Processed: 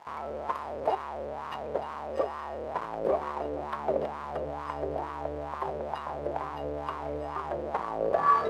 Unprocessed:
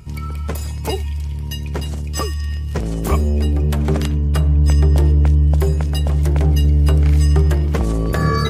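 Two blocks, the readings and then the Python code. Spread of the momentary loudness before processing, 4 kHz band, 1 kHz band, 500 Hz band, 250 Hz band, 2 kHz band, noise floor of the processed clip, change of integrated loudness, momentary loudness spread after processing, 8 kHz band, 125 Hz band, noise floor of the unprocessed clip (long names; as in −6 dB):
11 LU, −20.0 dB, +0.5 dB, −4.0 dB, −19.0 dB, −10.0 dB, −38 dBFS, −15.5 dB, 6 LU, below −25 dB, −32.0 dB, −25 dBFS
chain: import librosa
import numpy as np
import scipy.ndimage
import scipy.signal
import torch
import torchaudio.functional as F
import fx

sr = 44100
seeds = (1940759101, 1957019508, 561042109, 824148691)

p1 = fx.peak_eq(x, sr, hz=6700.0, db=-13.0, octaves=0.41)
p2 = fx.hum_notches(p1, sr, base_hz=50, count=3)
p3 = fx.schmitt(p2, sr, flips_db=-29.5)
p4 = p2 + (p3 * 10.0 ** (-3.5 / 20.0))
p5 = fx.low_shelf(p4, sr, hz=260.0, db=-6.0)
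p6 = fx.dmg_crackle(p5, sr, seeds[0], per_s=550.0, level_db=-23.0)
p7 = fx.wah_lfo(p6, sr, hz=2.2, low_hz=520.0, high_hz=1100.0, q=5.2)
y = p7 * 10.0 ** (2.0 / 20.0)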